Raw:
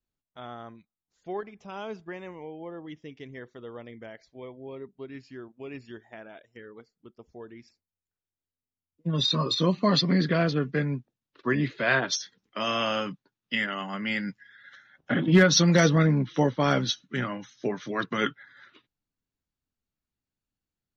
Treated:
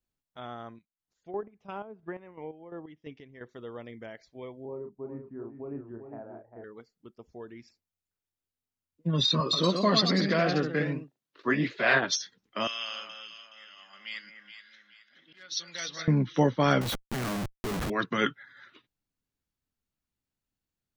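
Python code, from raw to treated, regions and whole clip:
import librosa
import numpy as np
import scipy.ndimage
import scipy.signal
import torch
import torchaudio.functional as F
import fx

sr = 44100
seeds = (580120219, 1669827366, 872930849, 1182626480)

y = fx.chain(x, sr, fx.env_lowpass_down(base_hz=890.0, full_db=-32.0),
    fx.transient(attack_db=2, sustain_db=-2),
    fx.chopper(hz=2.9, depth_pct=65, duty_pct=40), at=(0.65, 3.49))
y = fx.chain(y, sr, fx.lowpass(hz=1100.0, slope=24),
    fx.doubler(ms=35.0, db=-5.5),
    fx.echo_single(ms=398, db=-7.5), at=(4.65, 6.64))
y = fx.chain(y, sr, fx.highpass(hz=230.0, slope=6),
    fx.echo_pitch(ms=130, semitones=1, count=2, db_per_echo=-6.0), at=(9.4, 12.03))
y = fx.chain(y, sr, fx.auto_swell(attack_ms=728.0),
    fx.bandpass_q(hz=4300.0, q=1.4),
    fx.echo_alternate(ms=211, hz=1800.0, feedback_pct=61, wet_db=-5.0), at=(12.67, 16.08))
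y = fx.chain(y, sr, fx.lowpass(hz=2100.0, slope=6),
    fx.low_shelf(hz=180.0, db=5.5),
    fx.schmitt(flips_db=-44.5), at=(16.81, 17.9))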